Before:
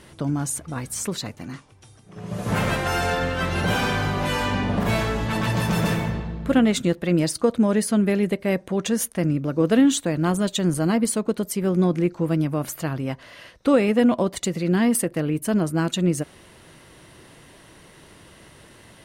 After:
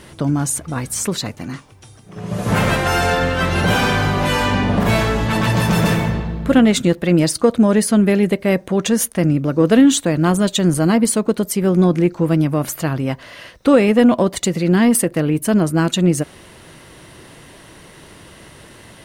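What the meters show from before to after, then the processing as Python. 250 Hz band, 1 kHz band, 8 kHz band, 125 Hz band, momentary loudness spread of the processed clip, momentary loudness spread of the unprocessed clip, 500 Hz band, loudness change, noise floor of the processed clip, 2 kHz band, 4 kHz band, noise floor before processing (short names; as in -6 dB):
+6.0 dB, +6.5 dB, +6.5 dB, +6.5 dB, 9 LU, 10 LU, +6.0 dB, +6.0 dB, -43 dBFS, +6.5 dB, +6.5 dB, -50 dBFS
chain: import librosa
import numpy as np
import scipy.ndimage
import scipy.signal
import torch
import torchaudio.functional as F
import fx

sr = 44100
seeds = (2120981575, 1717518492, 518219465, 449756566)

p1 = 10.0 ** (-14.5 / 20.0) * np.tanh(x / 10.0 ** (-14.5 / 20.0))
p2 = x + (p1 * librosa.db_to_amplitude(-7.0))
p3 = fx.quant_dither(p2, sr, seeds[0], bits=12, dither='none')
y = p3 * librosa.db_to_amplitude(3.5)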